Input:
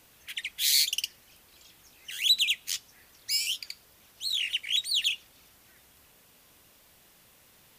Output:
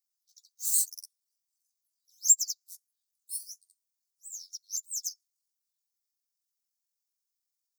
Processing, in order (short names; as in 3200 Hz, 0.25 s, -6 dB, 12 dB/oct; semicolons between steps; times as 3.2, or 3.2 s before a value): delay-line pitch shifter +11 st; inverse Chebyshev high-pass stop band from 1900 Hz, stop band 50 dB; upward expander 2.5:1, over -39 dBFS; gain +5.5 dB